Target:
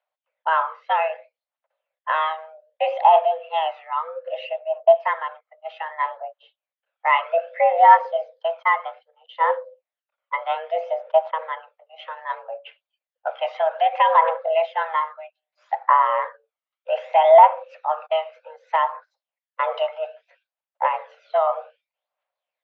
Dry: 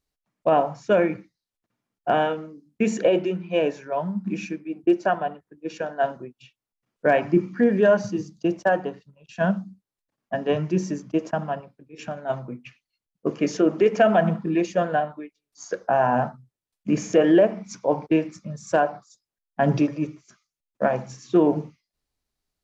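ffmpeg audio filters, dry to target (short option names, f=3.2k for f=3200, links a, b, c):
-af "aphaser=in_gain=1:out_gain=1:delay=1.2:decay=0.51:speed=0.63:type=triangular,highpass=f=240:t=q:w=0.5412,highpass=f=240:t=q:w=1.307,lowpass=f=3.2k:t=q:w=0.5176,lowpass=f=3.2k:t=q:w=0.7071,lowpass=f=3.2k:t=q:w=1.932,afreqshift=320,volume=1dB"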